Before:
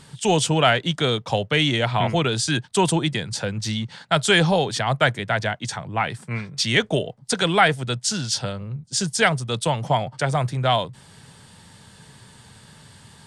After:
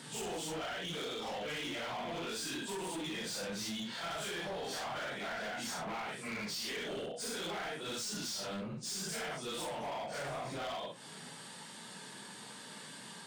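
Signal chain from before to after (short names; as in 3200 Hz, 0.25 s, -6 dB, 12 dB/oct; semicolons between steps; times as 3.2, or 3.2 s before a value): phase scrambler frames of 0.2 s; HPF 200 Hz 24 dB/oct; compressor 10:1, threshold -32 dBFS, peak gain reduction 20 dB; in parallel at +0.5 dB: limiter -31 dBFS, peak gain reduction 9.5 dB; on the sum: hard clip -31.5 dBFS, distortion -9 dB; gain -5.5 dB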